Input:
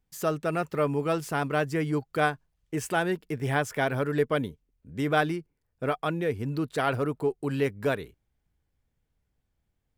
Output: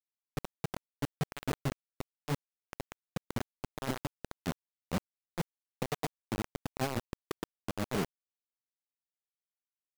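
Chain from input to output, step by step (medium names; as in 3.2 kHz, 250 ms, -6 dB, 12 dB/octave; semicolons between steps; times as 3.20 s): ladder band-pass 210 Hz, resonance 40%; compressor with a negative ratio -47 dBFS, ratio -0.5; bit crusher 7-bit; trim +10.5 dB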